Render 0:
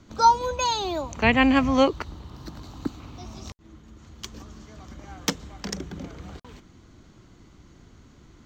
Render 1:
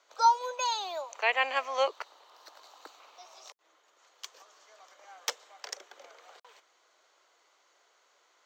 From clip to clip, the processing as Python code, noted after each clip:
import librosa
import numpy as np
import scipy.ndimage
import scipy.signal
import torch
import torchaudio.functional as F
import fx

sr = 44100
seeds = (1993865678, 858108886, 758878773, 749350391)

y = scipy.signal.sosfilt(scipy.signal.butter(6, 510.0, 'highpass', fs=sr, output='sos'), x)
y = y * librosa.db_to_amplitude(-5.5)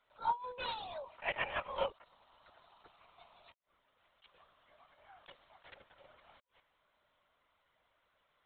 y = fx.lpc_vocoder(x, sr, seeds[0], excitation='whisper', order=16)
y = fx.attack_slew(y, sr, db_per_s=270.0)
y = y * librosa.db_to_amplitude(-8.0)